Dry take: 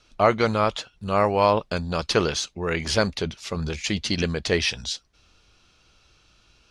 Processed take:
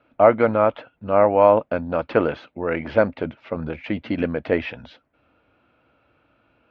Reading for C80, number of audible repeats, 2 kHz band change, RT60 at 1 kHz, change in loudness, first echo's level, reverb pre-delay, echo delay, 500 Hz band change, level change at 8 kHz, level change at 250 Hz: no reverb, no echo, -1.0 dB, no reverb, +3.0 dB, no echo, no reverb, no echo, +5.5 dB, under -35 dB, +2.5 dB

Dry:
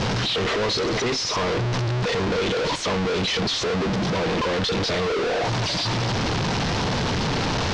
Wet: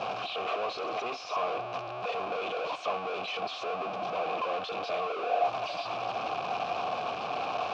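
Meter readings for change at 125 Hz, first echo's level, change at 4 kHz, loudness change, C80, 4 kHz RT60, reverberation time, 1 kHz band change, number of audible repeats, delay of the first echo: -27.5 dB, no echo, -15.0 dB, -10.0 dB, no reverb, no reverb, no reverb, -2.5 dB, no echo, no echo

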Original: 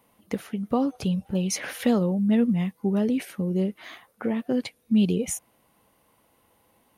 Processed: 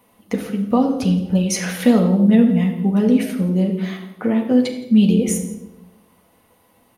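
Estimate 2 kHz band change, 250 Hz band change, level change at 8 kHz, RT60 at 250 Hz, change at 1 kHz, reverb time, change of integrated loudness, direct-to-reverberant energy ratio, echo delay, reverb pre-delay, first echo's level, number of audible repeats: +6.5 dB, +8.5 dB, +6.0 dB, 1.3 s, +7.0 dB, 0.95 s, +8.0 dB, 2.0 dB, 170 ms, 4 ms, -19.0 dB, 1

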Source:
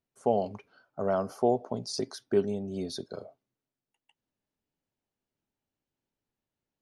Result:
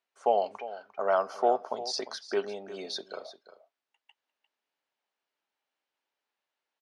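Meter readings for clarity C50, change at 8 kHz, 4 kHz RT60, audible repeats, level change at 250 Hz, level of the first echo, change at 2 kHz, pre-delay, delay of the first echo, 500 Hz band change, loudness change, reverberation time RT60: no reverb, -0.5 dB, no reverb, 1, -9.5 dB, -14.5 dB, +7.5 dB, no reverb, 350 ms, 0.0 dB, 0.0 dB, no reverb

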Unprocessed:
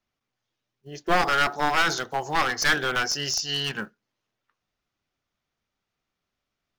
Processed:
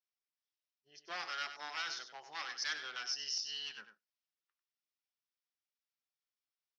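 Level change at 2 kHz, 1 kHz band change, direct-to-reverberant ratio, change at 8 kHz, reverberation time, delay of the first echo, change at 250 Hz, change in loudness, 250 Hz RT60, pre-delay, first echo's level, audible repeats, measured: -17.5 dB, -21.0 dB, no reverb, -14.5 dB, no reverb, 96 ms, -31.5 dB, -16.0 dB, no reverb, no reverb, -10.0 dB, 1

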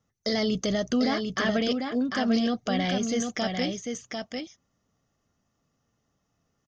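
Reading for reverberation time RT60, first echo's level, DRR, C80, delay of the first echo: no reverb, -5.0 dB, no reverb, no reverb, 747 ms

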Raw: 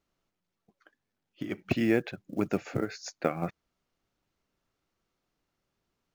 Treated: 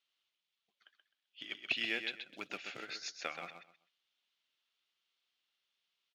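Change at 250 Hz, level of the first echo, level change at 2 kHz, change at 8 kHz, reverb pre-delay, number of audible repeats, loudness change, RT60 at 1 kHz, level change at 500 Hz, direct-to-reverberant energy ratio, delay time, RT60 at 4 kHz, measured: -22.0 dB, -7.5 dB, 0.0 dB, no reading, no reverb, 3, -8.0 dB, no reverb, -17.5 dB, no reverb, 129 ms, no reverb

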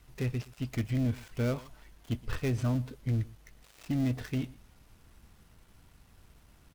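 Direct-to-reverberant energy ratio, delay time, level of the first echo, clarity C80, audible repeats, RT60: no reverb, 119 ms, -21.5 dB, no reverb, 1, no reverb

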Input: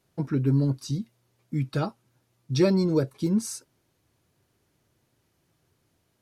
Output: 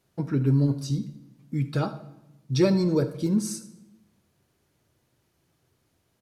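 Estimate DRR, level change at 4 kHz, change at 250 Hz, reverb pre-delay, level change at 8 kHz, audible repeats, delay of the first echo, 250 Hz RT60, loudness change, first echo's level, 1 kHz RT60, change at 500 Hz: 10.5 dB, +0.5 dB, +0.5 dB, 14 ms, +0.5 dB, 1, 77 ms, 1.2 s, +0.5 dB, -17.5 dB, 0.85 s, 0.0 dB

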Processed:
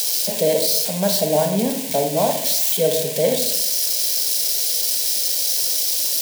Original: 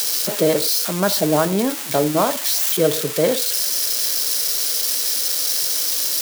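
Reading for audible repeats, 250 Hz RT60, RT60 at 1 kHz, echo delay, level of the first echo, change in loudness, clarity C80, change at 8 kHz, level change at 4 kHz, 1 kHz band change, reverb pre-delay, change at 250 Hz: no echo, 0.85 s, 0.70 s, no echo, no echo, 0.0 dB, 10.5 dB, +0.5 dB, 0.0 dB, -2.0 dB, 26 ms, -3.0 dB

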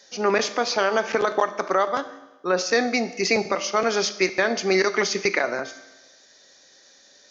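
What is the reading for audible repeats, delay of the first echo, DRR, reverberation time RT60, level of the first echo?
no echo, no echo, 11.0 dB, 1.1 s, no echo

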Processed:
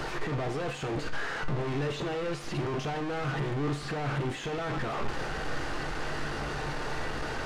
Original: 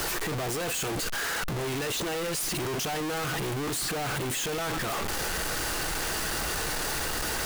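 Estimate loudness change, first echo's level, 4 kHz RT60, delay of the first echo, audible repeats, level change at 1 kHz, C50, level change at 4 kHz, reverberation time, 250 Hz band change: -4.0 dB, no echo, 0.50 s, no echo, no echo, -2.0 dB, 12.5 dB, -9.0 dB, 0.55 s, 0.0 dB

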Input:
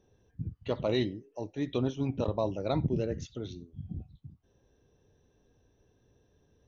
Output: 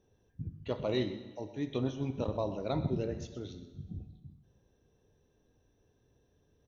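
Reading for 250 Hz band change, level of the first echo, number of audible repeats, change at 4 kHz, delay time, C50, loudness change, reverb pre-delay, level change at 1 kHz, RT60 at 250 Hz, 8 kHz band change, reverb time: -3.0 dB, -14.5 dB, 1, -3.0 dB, 127 ms, 10.0 dB, -3.0 dB, 5 ms, -3.0 dB, 1.2 s, no reading, 1.3 s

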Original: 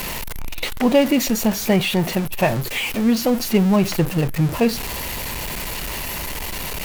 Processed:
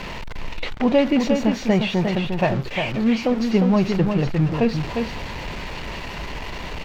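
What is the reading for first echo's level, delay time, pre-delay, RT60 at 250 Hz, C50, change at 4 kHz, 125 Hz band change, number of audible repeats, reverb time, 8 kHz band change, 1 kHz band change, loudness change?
-5.5 dB, 354 ms, no reverb, no reverb, no reverb, -5.0 dB, -0.5 dB, 1, no reverb, under -10 dB, -1.0 dB, -1.0 dB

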